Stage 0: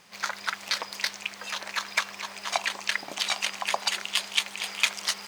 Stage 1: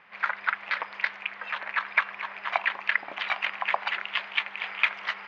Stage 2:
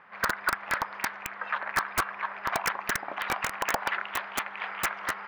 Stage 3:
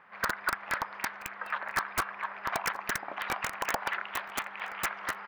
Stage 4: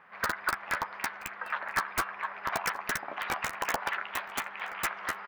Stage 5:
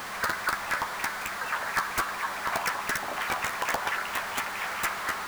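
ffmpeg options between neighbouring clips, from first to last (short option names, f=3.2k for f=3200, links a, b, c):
-af "lowpass=f=2.2k:w=0.5412,lowpass=f=2.2k:w=1.3066,tiltshelf=f=730:g=-8.5"
-af "aeval=exprs='(mod(6.68*val(0)+1,2)-1)/6.68':c=same,highshelf=f=1.9k:t=q:w=1.5:g=-7,volume=2.5dB"
-af "aecho=1:1:975:0.0794,volume=-3dB"
-filter_complex "[0:a]asplit=2[a][b];[b]adelay=12,volume=-9dB[c];[a][c]amix=inputs=2:normalize=0"
-af "aeval=exprs='val(0)+0.5*0.0251*sgn(val(0))':c=same"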